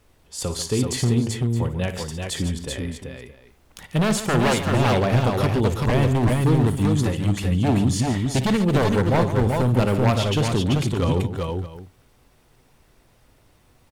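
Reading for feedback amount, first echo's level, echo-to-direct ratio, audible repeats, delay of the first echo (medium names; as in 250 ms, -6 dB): no regular repeats, -12.0 dB, -2.0 dB, 4, 56 ms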